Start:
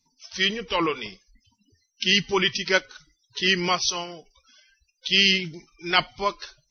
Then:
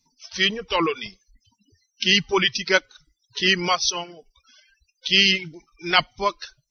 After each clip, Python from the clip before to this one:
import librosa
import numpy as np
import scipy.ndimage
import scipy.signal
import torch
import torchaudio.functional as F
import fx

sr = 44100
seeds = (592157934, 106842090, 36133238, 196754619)

y = fx.dereverb_blind(x, sr, rt60_s=0.76)
y = y * 10.0 ** (2.5 / 20.0)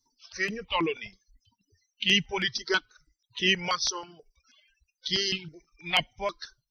y = fx.phaser_held(x, sr, hz=6.2, low_hz=670.0, high_hz=4500.0)
y = y * 10.0 ** (-3.5 / 20.0)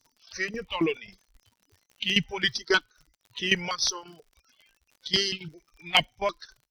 y = fx.cheby_harmonics(x, sr, harmonics=(8,), levels_db=(-38,), full_scale_db=-9.5)
y = fx.dmg_crackle(y, sr, seeds[0], per_s=78.0, level_db=-47.0)
y = fx.tremolo_shape(y, sr, shape='saw_down', hz=3.7, depth_pct=80)
y = y * 10.0 ** (4.5 / 20.0)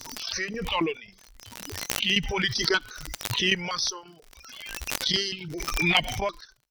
y = fx.pre_swell(x, sr, db_per_s=35.0)
y = y * 10.0 ** (-2.0 / 20.0)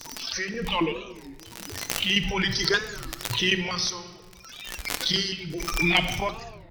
y = fx.room_shoebox(x, sr, seeds[1], volume_m3=1400.0, walls='mixed', distance_m=0.74)
y = fx.record_warp(y, sr, rpm=33.33, depth_cents=250.0)